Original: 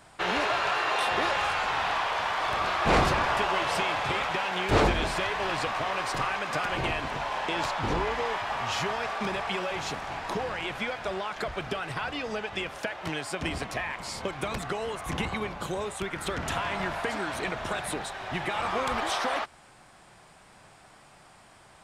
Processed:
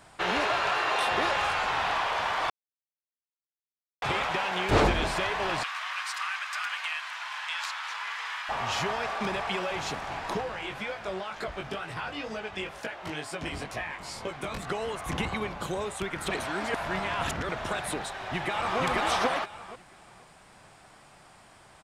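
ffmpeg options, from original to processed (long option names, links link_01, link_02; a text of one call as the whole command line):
ffmpeg -i in.wav -filter_complex "[0:a]asettb=1/sr,asplit=3[link_01][link_02][link_03];[link_01]atrim=end=5.634[link_04];[link_02]atrim=start=5.63:end=8.49,asetpts=PTS-STARTPTS,afade=type=in:duration=0.004:curve=qsin,afade=type=out:start_time=2.856:duration=0.004:curve=qsin,highpass=frequency=1200:width=0.5412,highpass=frequency=1200:width=1.3066[link_05];[link_03]atrim=start=8.486[link_06];[link_04][link_05]acrossfade=duration=0.004:curve1=hsin:curve2=qsin[link_07];[link_07][link_06]acrossfade=duration=0.004:curve1=qsin:curve2=hsin,asplit=3[link_08][link_09][link_10];[link_08]afade=type=out:start_time=10.4:duration=0.02[link_11];[link_09]flanger=delay=17.5:depth=4.1:speed=2.1,afade=type=in:start_time=10.4:duration=0.02,afade=type=out:start_time=14.66:duration=0.02[link_12];[link_10]afade=type=in:start_time=14.66:duration=0.02[link_13];[link_11][link_12][link_13]amix=inputs=3:normalize=0,asplit=2[link_14][link_15];[link_15]afade=type=in:start_time=18.18:duration=0.01,afade=type=out:start_time=18.79:duration=0.01,aecho=0:1:480|960|1440:0.944061|0.188812|0.0377624[link_16];[link_14][link_16]amix=inputs=2:normalize=0,asplit=5[link_17][link_18][link_19][link_20][link_21];[link_17]atrim=end=2.5,asetpts=PTS-STARTPTS,afade=type=out:start_time=2.496:duration=0.004:curve=hsin[link_22];[link_18]atrim=start=2.5:end=4.02,asetpts=PTS-STARTPTS,volume=0[link_23];[link_19]atrim=start=4.02:end=16.302,asetpts=PTS-STARTPTS,afade=type=in:duration=0.004:curve=hsin[link_24];[link_20]atrim=start=16.298:end=17.492,asetpts=PTS-STARTPTS,areverse[link_25];[link_21]atrim=start=17.488[link_26];[link_22][link_23][link_24]concat=n=3:v=0:a=1[link_27];[link_27][link_25]acrossfade=duration=0.004:curve1=hsin:curve2=hsin[link_28];[link_28][link_26]acrossfade=duration=0.004:curve1=hsin:curve2=hsin" out.wav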